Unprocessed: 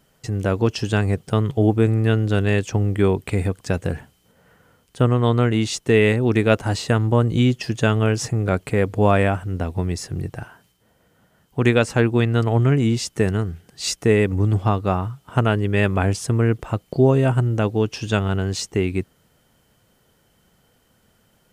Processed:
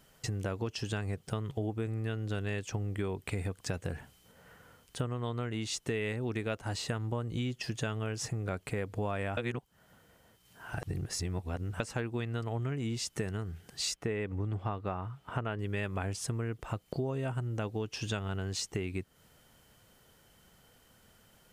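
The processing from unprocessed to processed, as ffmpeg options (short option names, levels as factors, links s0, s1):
-filter_complex "[0:a]asettb=1/sr,asplit=3[s0][s1][s2];[s0]atrim=end=13.944[s3];[s1]atrim=start=13.94:end=15.59,asetpts=PTS-STARTPTS,afade=t=in:d=0.004:c=qsin,afade=t=out:st=1.646:d=0.004:c=qsin,bass=f=250:g=-2,treble=f=4000:g=-12[s4];[s2]atrim=start=15.586[s5];[s3][s4]acrossfade=d=0.004:c1=hsin:c2=qsin[s6];[s6][s5]acrossfade=d=0.004:c1=qsin:c2=hsin,asplit=3[s7][s8][s9];[s7]atrim=end=9.372[s10];[s8]atrim=start=9.368:end=11.802,asetpts=PTS-STARTPTS,areverse[s11];[s9]atrim=start=11.798[s12];[s10][s11]acrossfade=d=0.004:c1=hsin:c2=hsin[s13];[s13][s12]acrossfade=d=0.004:c1=hsin:c2=hsin,equalizer=f=230:w=0.38:g=-4,acompressor=threshold=0.0224:ratio=5"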